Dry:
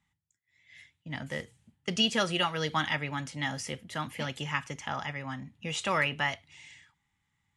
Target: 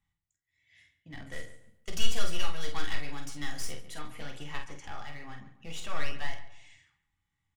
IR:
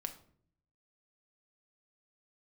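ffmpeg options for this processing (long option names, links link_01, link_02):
-filter_complex "[0:a]asettb=1/sr,asplit=3[link_01][link_02][link_03];[link_01]atrim=end=1.324[link_04];[link_02]atrim=start=1.32:end=3.95,asetpts=PTS-STARTPTS,afade=type=in:duration=0.004:curve=qsin,afade=type=out:start_time=2.626:duration=0.004:curve=qsin,highshelf=frequency=3900:gain=11.5[link_05];[link_03]atrim=start=3.946[link_06];[link_04][link_05]acrossfade=duration=0.004:curve1=hsin:curve2=qsin[link_07];[link_07][link_06]acrossfade=duration=0.004:curve1=qsin:curve2=hsin,aeval=exprs='clip(val(0),-1,0.0178)':channel_layout=same,lowshelf=frequency=60:gain=11.5,asplit=2[link_08][link_09];[link_09]adelay=48,volume=-6.5dB[link_10];[link_08][link_10]amix=inputs=2:normalize=0,asplit=2[link_11][link_12];[link_12]adelay=140,lowpass=frequency=2600:poles=1,volume=-13dB,asplit=2[link_13][link_14];[link_14]adelay=140,lowpass=frequency=2600:poles=1,volume=0.33,asplit=2[link_15][link_16];[link_16]adelay=140,lowpass=frequency=2600:poles=1,volume=0.33[link_17];[link_11][link_13][link_15][link_17]amix=inputs=4:normalize=0[link_18];[1:a]atrim=start_sample=2205,atrim=end_sample=3528,asetrate=83790,aresample=44100[link_19];[link_18][link_19]afir=irnorm=-1:irlink=0"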